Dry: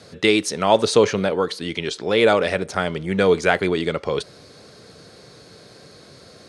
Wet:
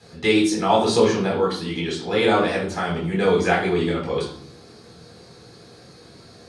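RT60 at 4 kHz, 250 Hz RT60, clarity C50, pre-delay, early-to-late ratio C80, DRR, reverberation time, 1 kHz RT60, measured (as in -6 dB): 0.45 s, 1.0 s, 6.0 dB, 7 ms, 10.5 dB, -3.5 dB, 0.65 s, 0.55 s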